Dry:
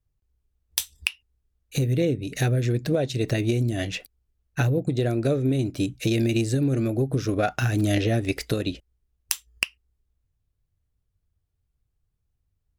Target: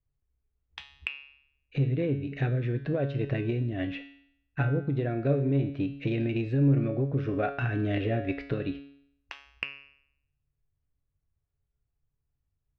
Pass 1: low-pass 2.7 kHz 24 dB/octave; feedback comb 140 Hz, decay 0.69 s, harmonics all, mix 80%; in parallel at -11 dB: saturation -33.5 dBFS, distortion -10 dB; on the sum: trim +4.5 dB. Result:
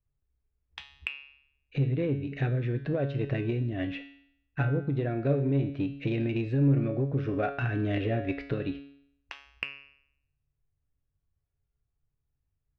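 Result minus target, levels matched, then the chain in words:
saturation: distortion +7 dB
low-pass 2.7 kHz 24 dB/octave; feedback comb 140 Hz, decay 0.69 s, harmonics all, mix 80%; in parallel at -11 dB: saturation -26.5 dBFS, distortion -17 dB; on the sum: trim +4.5 dB

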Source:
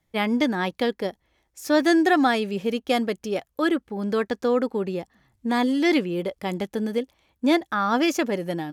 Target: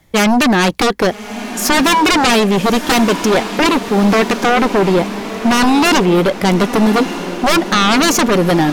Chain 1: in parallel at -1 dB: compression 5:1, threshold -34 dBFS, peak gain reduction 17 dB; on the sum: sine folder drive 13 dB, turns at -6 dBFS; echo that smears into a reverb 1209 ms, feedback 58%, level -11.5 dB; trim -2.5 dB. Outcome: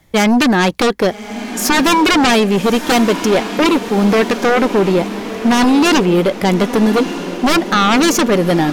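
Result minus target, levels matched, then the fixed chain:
compression: peak gain reduction +8.5 dB
in parallel at -1 dB: compression 5:1, threshold -23.5 dBFS, peak gain reduction 9 dB; on the sum: sine folder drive 13 dB, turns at -6 dBFS; echo that smears into a reverb 1209 ms, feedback 58%, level -11.5 dB; trim -2.5 dB

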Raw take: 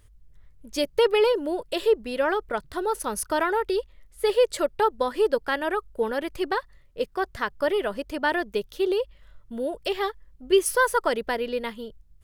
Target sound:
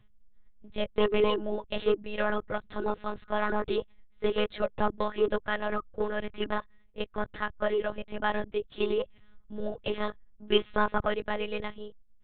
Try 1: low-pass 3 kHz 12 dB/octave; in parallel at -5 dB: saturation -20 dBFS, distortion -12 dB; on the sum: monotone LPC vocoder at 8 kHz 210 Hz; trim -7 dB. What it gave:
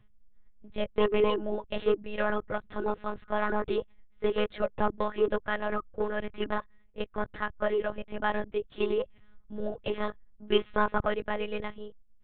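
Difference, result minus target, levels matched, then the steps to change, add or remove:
4 kHz band -3.0 dB
remove: low-pass 3 kHz 12 dB/octave

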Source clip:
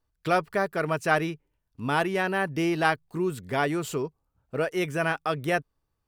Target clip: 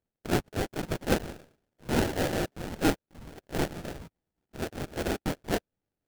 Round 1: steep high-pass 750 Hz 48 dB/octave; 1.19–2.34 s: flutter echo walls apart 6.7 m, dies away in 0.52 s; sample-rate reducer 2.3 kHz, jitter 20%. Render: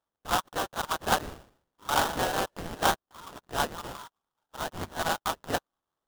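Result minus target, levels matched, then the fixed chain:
sample-rate reducer: distortion +16 dB
steep high-pass 750 Hz 48 dB/octave; 1.19–2.34 s: flutter echo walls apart 6.7 m, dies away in 0.52 s; sample-rate reducer 1.1 kHz, jitter 20%

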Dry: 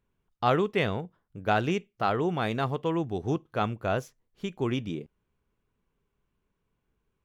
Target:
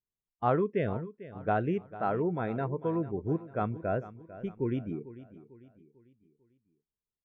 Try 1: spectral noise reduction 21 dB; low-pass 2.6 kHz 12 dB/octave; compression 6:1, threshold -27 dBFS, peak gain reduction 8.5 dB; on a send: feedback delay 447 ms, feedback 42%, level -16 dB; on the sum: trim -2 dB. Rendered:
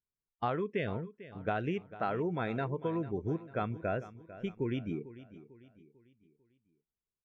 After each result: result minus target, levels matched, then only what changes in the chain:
compression: peak gain reduction +8.5 dB; 2 kHz band +4.0 dB
remove: compression 6:1, threshold -27 dBFS, peak gain reduction 8.5 dB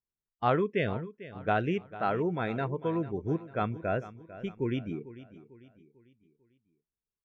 2 kHz band +4.5 dB
change: low-pass 1.3 kHz 12 dB/octave

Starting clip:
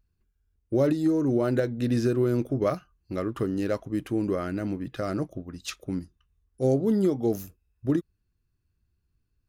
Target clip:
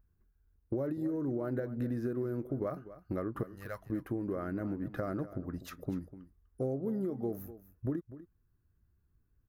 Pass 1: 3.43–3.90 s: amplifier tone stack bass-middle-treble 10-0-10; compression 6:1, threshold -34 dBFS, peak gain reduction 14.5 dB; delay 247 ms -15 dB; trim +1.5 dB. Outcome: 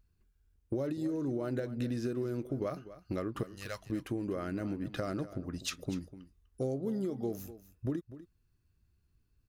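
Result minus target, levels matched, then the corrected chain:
4 kHz band +14.5 dB
3.43–3.90 s: amplifier tone stack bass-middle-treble 10-0-10; compression 6:1, threshold -34 dBFS, peak gain reduction 14.5 dB; high-order bell 4.7 kHz -15 dB 2.2 oct; delay 247 ms -15 dB; trim +1.5 dB

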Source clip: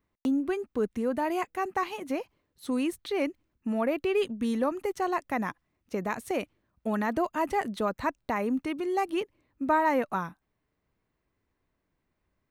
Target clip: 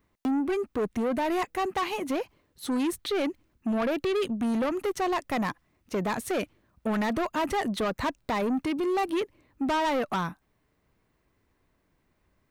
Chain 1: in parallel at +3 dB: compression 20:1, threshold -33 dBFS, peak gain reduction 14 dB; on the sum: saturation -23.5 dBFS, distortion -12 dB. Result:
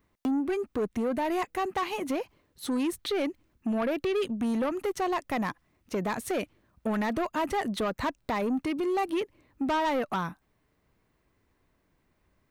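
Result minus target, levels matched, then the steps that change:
compression: peak gain reduction +8.5 dB
change: compression 20:1, threshold -24 dBFS, peak gain reduction 5.5 dB

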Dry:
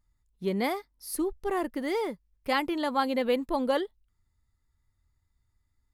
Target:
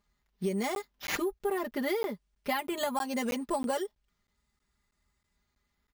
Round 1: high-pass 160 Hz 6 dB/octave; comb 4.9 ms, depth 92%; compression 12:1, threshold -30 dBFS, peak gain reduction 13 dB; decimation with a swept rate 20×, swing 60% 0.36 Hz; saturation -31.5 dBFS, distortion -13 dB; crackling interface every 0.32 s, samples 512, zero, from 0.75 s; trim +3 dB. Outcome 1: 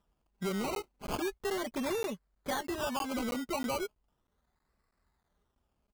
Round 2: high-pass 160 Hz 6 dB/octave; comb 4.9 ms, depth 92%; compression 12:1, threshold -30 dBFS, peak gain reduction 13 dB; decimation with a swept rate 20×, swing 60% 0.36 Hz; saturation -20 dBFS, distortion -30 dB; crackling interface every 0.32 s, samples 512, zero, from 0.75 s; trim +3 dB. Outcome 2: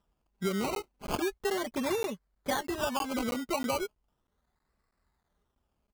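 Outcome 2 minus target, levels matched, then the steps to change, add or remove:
decimation with a swept rate: distortion +11 dB
change: decimation with a swept rate 4×, swing 60% 0.36 Hz

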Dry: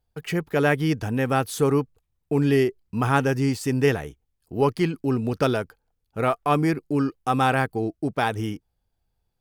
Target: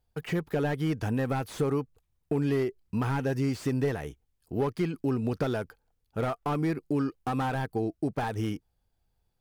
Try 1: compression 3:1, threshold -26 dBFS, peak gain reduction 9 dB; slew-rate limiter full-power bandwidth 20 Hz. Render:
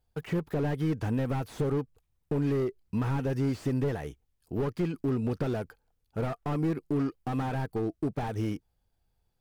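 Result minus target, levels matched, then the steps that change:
slew-rate limiter: distortion +5 dB
change: slew-rate limiter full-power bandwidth 42 Hz

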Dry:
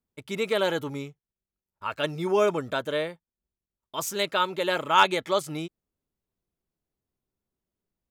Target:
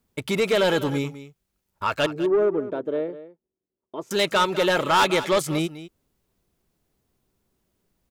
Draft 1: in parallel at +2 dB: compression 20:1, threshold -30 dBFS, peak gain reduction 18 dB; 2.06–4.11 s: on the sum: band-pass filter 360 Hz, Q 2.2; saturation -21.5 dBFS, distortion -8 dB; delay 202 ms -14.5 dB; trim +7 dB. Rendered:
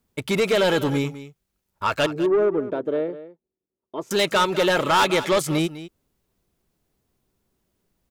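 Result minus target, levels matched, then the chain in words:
compression: peak gain reduction -9.5 dB
in parallel at +2 dB: compression 20:1, threshold -40 dBFS, peak gain reduction 27.5 dB; 2.06–4.11 s: on the sum: band-pass filter 360 Hz, Q 2.2; saturation -21.5 dBFS, distortion -9 dB; delay 202 ms -14.5 dB; trim +7 dB

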